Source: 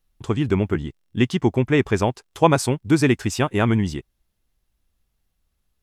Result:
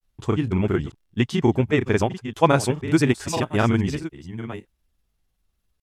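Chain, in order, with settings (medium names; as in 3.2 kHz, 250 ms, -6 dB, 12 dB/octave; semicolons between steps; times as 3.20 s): chunks repeated in reverse 582 ms, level -12.5 dB; granulator, spray 26 ms, pitch spread up and down by 0 st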